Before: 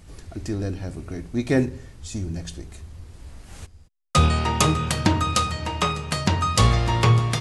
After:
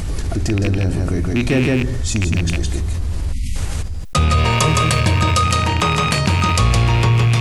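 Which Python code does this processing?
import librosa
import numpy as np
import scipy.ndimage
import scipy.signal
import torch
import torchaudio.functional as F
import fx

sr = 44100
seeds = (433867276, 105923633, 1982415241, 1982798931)

y = fx.rattle_buzz(x, sr, strikes_db=-25.0, level_db=-16.0)
y = fx.low_shelf(y, sr, hz=100.0, db=6.5)
y = y + 10.0 ** (-3.5 / 20.0) * np.pad(y, (int(163 * sr / 1000.0), 0))[:len(y)]
y = fx.spec_erase(y, sr, start_s=3.33, length_s=0.23, low_hz=280.0, high_hz=1900.0)
y = fx.comb(y, sr, ms=1.8, depth=0.55, at=(4.32, 5.44))
y = fx.env_flatten(y, sr, amount_pct=70)
y = y * librosa.db_to_amplitude(-3.0)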